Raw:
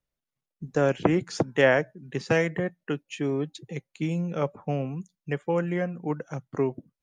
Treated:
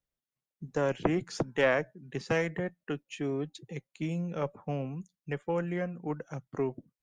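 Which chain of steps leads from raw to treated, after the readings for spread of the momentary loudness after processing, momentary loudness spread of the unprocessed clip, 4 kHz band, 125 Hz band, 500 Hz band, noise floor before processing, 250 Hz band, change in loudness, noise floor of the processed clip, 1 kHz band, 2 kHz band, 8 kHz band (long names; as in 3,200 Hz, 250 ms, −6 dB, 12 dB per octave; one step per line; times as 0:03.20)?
12 LU, 12 LU, −5.0 dB, −5.5 dB, −5.5 dB, below −85 dBFS, −5.5 dB, −5.5 dB, below −85 dBFS, −5.0 dB, −5.5 dB, −5.0 dB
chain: one-sided soft clipper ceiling −11.5 dBFS
level −4.5 dB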